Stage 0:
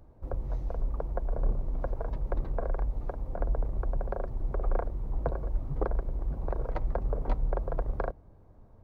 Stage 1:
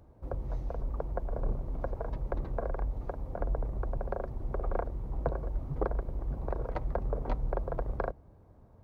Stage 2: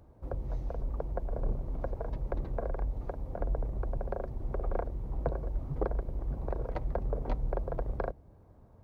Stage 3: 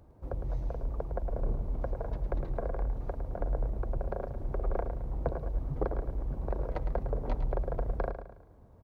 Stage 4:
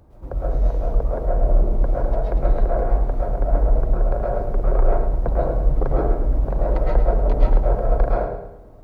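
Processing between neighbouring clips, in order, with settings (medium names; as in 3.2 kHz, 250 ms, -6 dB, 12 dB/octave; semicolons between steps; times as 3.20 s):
high-pass 41 Hz
dynamic bell 1.2 kHz, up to -4 dB, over -53 dBFS, Q 1.3
feedback delay 108 ms, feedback 41%, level -9 dB
algorithmic reverb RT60 0.51 s, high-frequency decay 0.35×, pre-delay 90 ms, DRR -5.5 dB; trim +5.5 dB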